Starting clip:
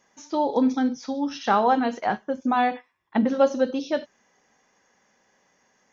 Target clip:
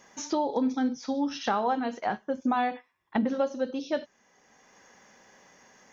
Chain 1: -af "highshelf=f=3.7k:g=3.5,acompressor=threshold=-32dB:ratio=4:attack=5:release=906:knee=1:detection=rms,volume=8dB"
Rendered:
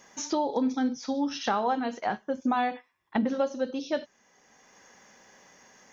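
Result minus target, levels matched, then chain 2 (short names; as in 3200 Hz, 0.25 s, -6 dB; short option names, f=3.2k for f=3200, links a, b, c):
8000 Hz band +2.5 dB
-af "acompressor=threshold=-32dB:ratio=4:attack=5:release=906:knee=1:detection=rms,volume=8dB"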